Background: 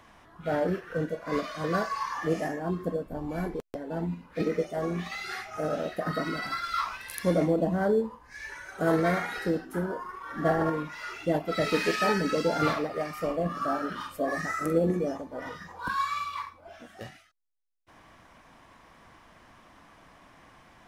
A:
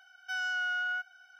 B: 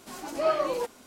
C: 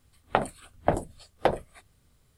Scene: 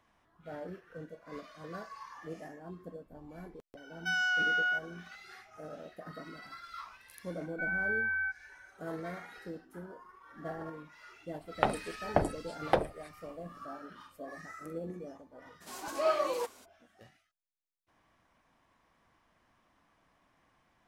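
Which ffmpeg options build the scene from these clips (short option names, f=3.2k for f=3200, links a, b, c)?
-filter_complex "[1:a]asplit=2[a][b];[0:a]volume=-15.5dB[c];[a]acontrast=31[d];[b]lowpass=f=2.6k:t=q:w=0.5098,lowpass=f=2.6k:t=q:w=0.6013,lowpass=f=2.6k:t=q:w=0.9,lowpass=f=2.6k:t=q:w=2.563,afreqshift=-3000[e];[2:a]bass=f=250:g=-12,treble=f=4k:g=2[f];[d]atrim=end=1.39,asetpts=PTS-STARTPTS,volume=-2.5dB,afade=t=in:d=0.004:c=hsin,afade=t=out:st=1.386:d=0.004:c=hsin,adelay=166257S[g];[e]atrim=end=1.39,asetpts=PTS-STARTPTS,afade=t=in:d=0.004:c=hsin,afade=t=out:st=1.386:d=0.004:c=hsin,adelay=321930S[h];[3:a]atrim=end=2.37,asetpts=PTS-STARTPTS,volume=-3.5dB,afade=t=in:d=0.004:c=hsin,afade=t=out:st=2.366:d=0.004:c=hsin,adelay=11280[i];[f]atrim=end=1.06,asetpts=PTS-STARTPTS,volume=-3.5dB,afade=t=in:d=0.02,afade=t=out:st=1.04:d=0.02,adelay=15600[j];[c][g][h][i][j]amix=inputs=5:normalize=0"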